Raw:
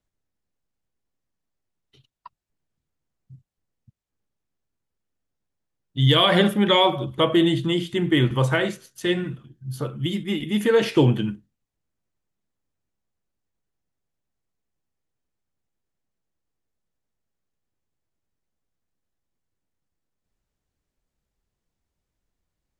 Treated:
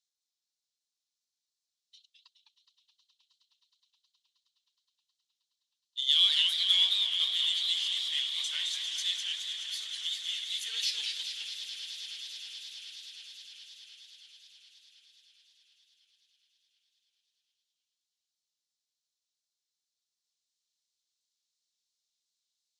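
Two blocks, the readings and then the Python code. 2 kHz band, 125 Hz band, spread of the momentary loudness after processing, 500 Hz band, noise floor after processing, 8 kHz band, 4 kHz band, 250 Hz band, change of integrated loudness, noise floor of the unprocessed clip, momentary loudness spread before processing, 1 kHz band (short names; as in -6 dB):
-12.5 dB, under -40 dB, 20 LU, under -40 dB, under -85 dBFS, +4.0 dB, +1.0 dB, under -40 dB, -7.5 dB, -83 dBFS, 13 LU, under -30 dB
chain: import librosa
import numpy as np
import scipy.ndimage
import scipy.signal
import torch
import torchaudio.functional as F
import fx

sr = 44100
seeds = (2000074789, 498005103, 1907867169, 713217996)

p1 = fx.peak_eq(x, sr, hz=6800.0, db=11.5, octaves=2.5)
p2 = fx.notch(p1, sr, hz=4700.0, q=18.0)
p3 = np.clip(p2, -10.0 ** (-24.5 / 20.0), 10.0 ** (-24.5 / 20.0))
p4 = p2 + (p3 * 10.0 ** (-4.0 / 20.0))
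p5 = fx.ladder_bandpass(p4, sr, hz=4800.0, resonance_pct=50)
p6 = p5 + fx.echo_swell(p5, sr, ms=105, loudest=8, wet_db=-16.5, dry=0)
y = fx.echo_warbled(p6, sr, ms=211, feedback_pct=58, rate_hz=2.8, cents=194, wet_db=-5)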